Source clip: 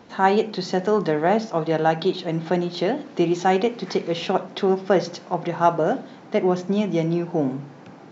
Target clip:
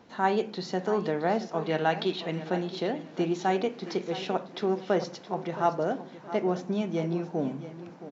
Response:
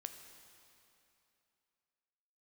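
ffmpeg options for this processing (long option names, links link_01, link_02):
-filter_complex "[0:a]asettb=1/sr,asplit=3[link_01][link_02][link_03];[link_01]atrim=end=1.644[link_04];[link_02]atrim=start=1.64:end=2.4,asetpts=PTS-STARTPTS,afade=type=in:duration=0.004:curve=qsin,afade=type=out:start_time=0.756:duration=0.004:curve=qsin,equalizer=frequency=2500:width=1:gain=8[link_05];[link_03]atrim=start=2.396[link_06];[link_04][link_05]acrossfade=duration=0.004:curve1=hsin:curve2=qsin[link_07];[link_07][link_06]acrossfade=duration=0.004:curve1=qsin:curve2=hsin,asplit=2[link_08][link_09];[link_09]aecho=0:1:670|1340|2010:0.211|0.0592|0.0166[link_10];[link_08][link_10]amix=inputs=2:normalize=0,volume=-7.5dB"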